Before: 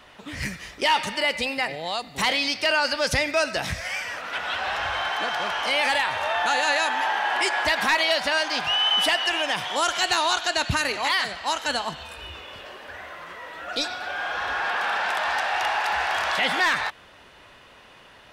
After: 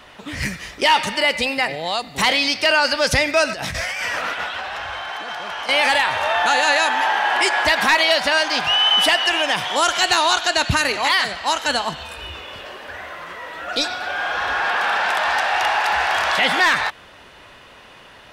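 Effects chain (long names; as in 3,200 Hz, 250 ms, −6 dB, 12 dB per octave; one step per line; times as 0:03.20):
0:03.49–0:05.69: compressor whose output falls as the input rises −33 dBFS, ratio −1
level +5.5 dB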